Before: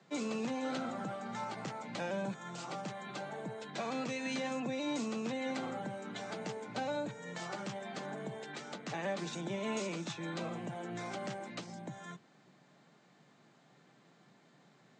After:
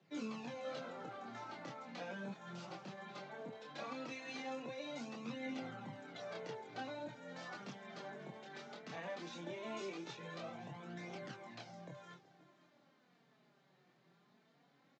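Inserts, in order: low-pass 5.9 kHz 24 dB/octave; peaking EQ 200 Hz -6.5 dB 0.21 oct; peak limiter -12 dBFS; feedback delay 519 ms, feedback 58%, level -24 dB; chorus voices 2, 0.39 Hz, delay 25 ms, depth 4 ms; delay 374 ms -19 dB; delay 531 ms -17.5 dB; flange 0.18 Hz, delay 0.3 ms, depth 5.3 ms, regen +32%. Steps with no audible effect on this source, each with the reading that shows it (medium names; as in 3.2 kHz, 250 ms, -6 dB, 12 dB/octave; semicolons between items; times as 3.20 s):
peak limiter -12 dBFS: peak at its input -25.0 dBFS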